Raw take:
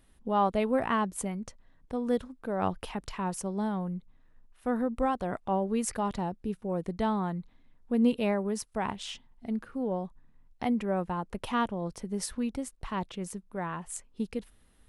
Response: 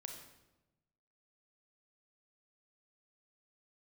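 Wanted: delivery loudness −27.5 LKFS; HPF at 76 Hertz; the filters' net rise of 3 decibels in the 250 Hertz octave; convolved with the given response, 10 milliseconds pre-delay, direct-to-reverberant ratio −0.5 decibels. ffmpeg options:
-filter_complex "[0:a]highpass=76,equalizer=frequency=250:width_type=o:gain=3.5,asplit=2[link_01][link_02];[1:a]atrim=start_sample=2205,adelay=10[link_03];[link_02][link_03]afir=irnorm=-1:irlink=0,volume=4.5dB[link_04];[link_01][link_04]amix=inputs=2:normalize=0,volume=-0.5dB"

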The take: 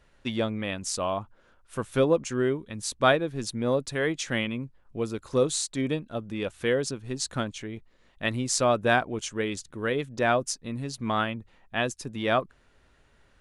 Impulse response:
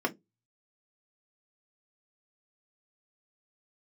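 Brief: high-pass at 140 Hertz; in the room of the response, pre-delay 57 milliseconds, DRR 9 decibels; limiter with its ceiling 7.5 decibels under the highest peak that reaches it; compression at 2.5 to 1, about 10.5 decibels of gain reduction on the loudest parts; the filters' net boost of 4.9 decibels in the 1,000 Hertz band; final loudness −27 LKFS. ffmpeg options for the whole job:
-filter_complex "[0:a]highpass=140,equalizer=frequency=1000:width_type=o:gain=7,acompressor=threshold=-28dB:ratio=2.5,alimiter=limit=-20dB:level=0:latency=1,asplit=2[link_01][link_02];[1:a]atrim=start_sample=2205,adelay=57[link_03];[link_02][link_03]afir=irnorm=-1:irlink=0,volume=-17.5dB[link_04];[link_01][link_04]amix=inputs=2:normalize=0,volume=6dB"

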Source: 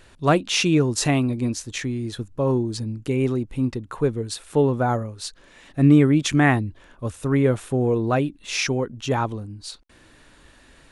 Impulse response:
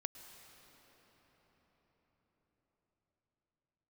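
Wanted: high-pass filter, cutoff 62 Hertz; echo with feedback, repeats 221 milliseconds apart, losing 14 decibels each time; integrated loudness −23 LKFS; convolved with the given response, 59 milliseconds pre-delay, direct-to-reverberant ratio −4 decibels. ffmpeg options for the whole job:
-filter_complex "[0:a]highpass=62,aecho=1:1:221|442:0.2|0.0399,asplit=2[link_01][link_02];[1:a]atrim=start_sample=2205,adelay=59[link_03];[link_02][link_03]afir=irnorm=-1:irlink=0,volume=6.5dB[link_04];[link_01][link_04]amix=inputs=2:normalize=0,volume=-6dB"

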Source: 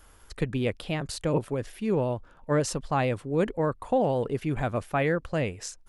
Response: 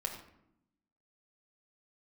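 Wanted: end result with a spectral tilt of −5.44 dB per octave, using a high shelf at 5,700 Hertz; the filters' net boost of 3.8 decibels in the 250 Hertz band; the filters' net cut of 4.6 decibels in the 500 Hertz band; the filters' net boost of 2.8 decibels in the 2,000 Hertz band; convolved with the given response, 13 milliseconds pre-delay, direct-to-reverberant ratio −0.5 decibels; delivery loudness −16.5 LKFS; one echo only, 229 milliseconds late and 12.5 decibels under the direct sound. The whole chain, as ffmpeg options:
-filter_complex "[0:a]equalizer=frequency=250:width_type=o:gain=7,equalizer=frequency=500:width_type=o:gain=-7.5,equalizer=frequency=2000:width_type=o:gain=4.5,highshelf=frequency=5700:gain=-6,aecho=1:1:229:0.237,asplit=2[link_01][link_02];[1:a]atrim=start_sample=2205,adelay=13[link_03];[link_02][link_03]afir=irnorm=-1:irlink=0,volume=-1dB[link_04];[link_01][link_04]amix=inputs=2:normalize=0,volume=8dB"

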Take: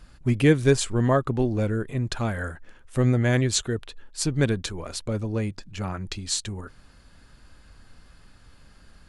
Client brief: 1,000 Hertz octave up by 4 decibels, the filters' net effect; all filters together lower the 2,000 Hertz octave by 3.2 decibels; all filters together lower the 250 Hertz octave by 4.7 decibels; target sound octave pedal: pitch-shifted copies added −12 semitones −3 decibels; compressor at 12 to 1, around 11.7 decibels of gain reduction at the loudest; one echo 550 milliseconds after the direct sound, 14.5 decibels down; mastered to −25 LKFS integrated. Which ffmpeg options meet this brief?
ffmpeg -i in.wav -filter_complex "[0:a]equalizer=frequency=250:width_type=o:gain=-6.5,equalizer=frequency=1000:width_type=o:gain=7.5,equalizer=frequency=2000:width_type=o:gain=-7,acompressor=threshold=-26dB:ratio=12,aecho=1:1:550:0.188,asplit=2[link_01][link_02];[link_02]asetrate=22050,aresample=44100,atempo=2,volume=-3dB[link_03];[link_01][link_03]amix=inputs=2:normalize=0,volume=6dB" out.wav

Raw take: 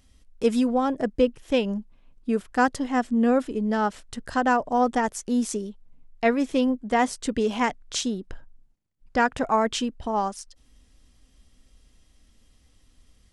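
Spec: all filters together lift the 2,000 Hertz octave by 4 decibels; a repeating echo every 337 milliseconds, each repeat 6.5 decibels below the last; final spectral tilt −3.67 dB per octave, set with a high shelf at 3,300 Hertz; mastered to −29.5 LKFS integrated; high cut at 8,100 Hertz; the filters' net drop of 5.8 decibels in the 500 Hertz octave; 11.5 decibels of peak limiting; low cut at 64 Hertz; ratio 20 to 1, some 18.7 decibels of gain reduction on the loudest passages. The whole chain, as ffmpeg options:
ffmpeg -i in.wav -af "highpass=64,lowpass=8100,equalizer=frequency=500:width_type=o:gain=-7,equalizer=frequency=2000:width_type=o:gain=4.5,highshelf=frequency=3300:gain=4,acompressor=threshold=-35dB:ratio=20,alimiter=level_in=7dB:limit=-24dB:level=0:latency=1,volume=-7dB,aecho=1:1:337|674|1011|1348|1685|2022:0.473|0.222|0.105|0.0491|0.0231|0.0109,volume=11.5dB" out.wav

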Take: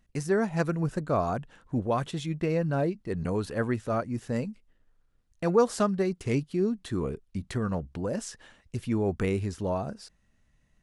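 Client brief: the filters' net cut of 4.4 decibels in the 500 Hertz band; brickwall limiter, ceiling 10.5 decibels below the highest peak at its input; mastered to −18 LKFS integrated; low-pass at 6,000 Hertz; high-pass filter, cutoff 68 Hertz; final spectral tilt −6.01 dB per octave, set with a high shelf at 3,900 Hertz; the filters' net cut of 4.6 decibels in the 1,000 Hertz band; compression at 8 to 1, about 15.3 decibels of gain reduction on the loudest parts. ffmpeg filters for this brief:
ffmpeg -i in.wav -af "highpass=68,lowpass=6000,equalizer=frequency=500:width_type=o:gain=-4.5,equalizer=frequency=1000:width_type=o:gain=-5,highshelf=frequency=3900:gain=4.5,acompressor=threshold=-39dB:ratio=8,volume=29dB,alimiter=limit=-8.5dB:level=0:latency=1" out.wav

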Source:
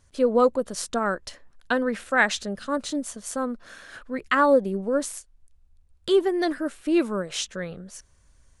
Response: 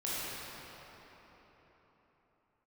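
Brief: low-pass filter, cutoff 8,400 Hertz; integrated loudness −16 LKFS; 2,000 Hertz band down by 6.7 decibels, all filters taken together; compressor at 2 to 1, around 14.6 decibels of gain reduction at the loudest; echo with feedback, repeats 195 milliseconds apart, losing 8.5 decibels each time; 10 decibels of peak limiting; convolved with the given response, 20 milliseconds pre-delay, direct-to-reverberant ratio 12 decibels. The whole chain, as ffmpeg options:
-filter_complex "[0:a]lowpass=8400,equalizer=frequency=2000:width_type=o:gain=-9,acompressor=threshold=-43dB:ratio=2,alimiter=level_in=7.5dB:limit=-24dB:level=0:latency=1,volume=-7.5dB,aecho=1:1:195|390|585|780:0.376|0.143|0.0543|0.0206,asplit=2[link_01][link_02];[1:a]atrim=start_sample=2205,adelay=20[link_03];[link_02][link_03]afir=irnorm=-1:irlink=0,volume=-18dB[link_04];[link_01][link_04]amix=inputs=2:normalize=0,volume=25dB"

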